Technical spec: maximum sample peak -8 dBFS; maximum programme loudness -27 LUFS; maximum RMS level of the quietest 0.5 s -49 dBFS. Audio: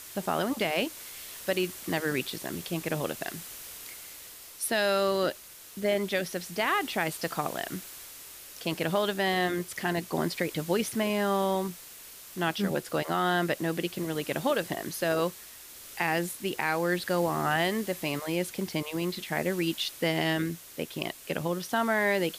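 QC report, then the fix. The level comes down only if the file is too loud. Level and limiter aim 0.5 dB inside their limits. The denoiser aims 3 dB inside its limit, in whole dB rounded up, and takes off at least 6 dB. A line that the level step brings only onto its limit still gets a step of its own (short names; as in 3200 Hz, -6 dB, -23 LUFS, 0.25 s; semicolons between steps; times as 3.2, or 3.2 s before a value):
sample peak -14.5 dBFS: OK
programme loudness -30.0 LUFS: OK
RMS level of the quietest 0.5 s -47 dBFS: fail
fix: denoiser 6 dB, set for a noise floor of -47 dBFS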